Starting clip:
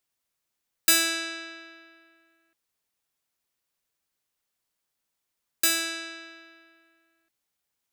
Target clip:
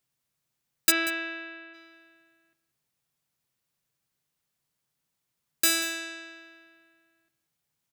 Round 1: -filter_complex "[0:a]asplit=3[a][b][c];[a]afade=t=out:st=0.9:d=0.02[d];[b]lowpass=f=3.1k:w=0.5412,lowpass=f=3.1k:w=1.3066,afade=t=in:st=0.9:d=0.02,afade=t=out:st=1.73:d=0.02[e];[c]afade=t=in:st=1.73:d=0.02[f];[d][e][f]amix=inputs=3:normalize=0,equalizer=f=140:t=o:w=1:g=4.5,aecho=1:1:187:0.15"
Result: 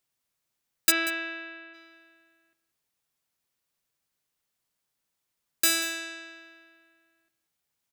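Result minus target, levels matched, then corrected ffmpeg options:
125 Hz band -7.0 dB
-filter_complex "[0:a]asplit=3[a][b][c];[a]afade=t=out:st=0.9:d=0.02[d];[b]lowpass=f=3.1k:w=0.5412,lowpass=f=3.1k:w=1.3066,afade=t=in:st=0.9:d=0.02,afade=t=out:st=1.73:d=0.02[e];[c]afade=t=in:st=1.73:d=0.02[f];[d][e][f]amix=inputs=3:normalize=0,equalizer=f=140:t=o:w=1:g=13.5,aecho=1:1:187:0.15"

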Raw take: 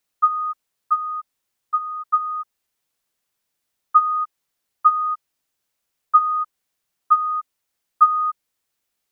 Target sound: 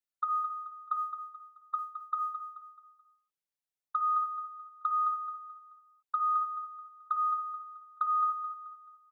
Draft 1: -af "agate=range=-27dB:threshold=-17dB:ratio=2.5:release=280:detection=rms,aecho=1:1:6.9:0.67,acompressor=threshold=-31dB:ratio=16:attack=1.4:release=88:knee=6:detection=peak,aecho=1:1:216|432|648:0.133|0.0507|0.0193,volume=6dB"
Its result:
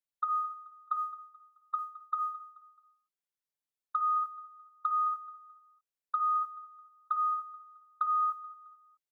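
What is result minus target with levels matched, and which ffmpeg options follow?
echo-to-direct -8 dB
-af "agate=range=-27dB:threshold=-17dB:ratio=2.5:release=280:detection=rms,aecho=1:1:6.9:0.67,acompressor=threshold=-31dB:ratio=16:attack=1.4:release=88:knee=6:detection=peak,aecho=1:1:216|432|648|864:0.335|0.127|0.0484|0.0184,volume=6dB"

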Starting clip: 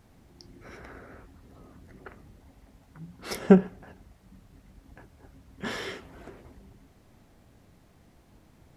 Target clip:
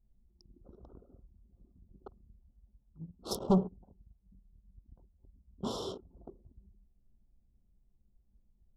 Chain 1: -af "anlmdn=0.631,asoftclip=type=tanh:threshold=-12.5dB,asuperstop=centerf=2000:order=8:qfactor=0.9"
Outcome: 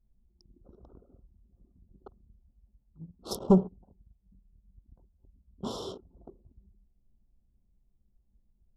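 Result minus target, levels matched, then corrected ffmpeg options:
soft clip: distortion -6 dB
-af "anlmdn=0.631,asoftclip=type=tanh:threshold=-20.5dB,asuperstop=centerf=2000:order=8:qfactor=0.9"

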